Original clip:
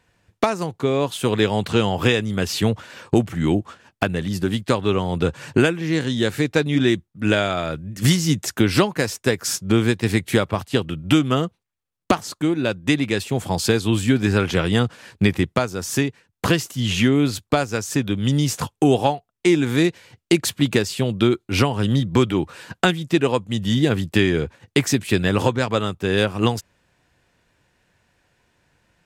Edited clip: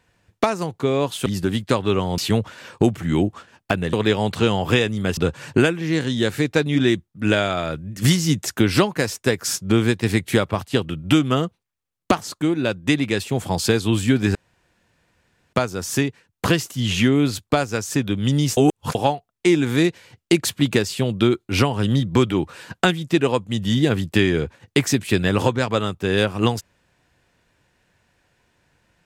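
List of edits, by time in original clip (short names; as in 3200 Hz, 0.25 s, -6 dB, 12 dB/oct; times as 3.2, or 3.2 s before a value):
1.26–2.5 swap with 4.25–5.17
14.35–15.53 room tone
18.57–18.95 reverse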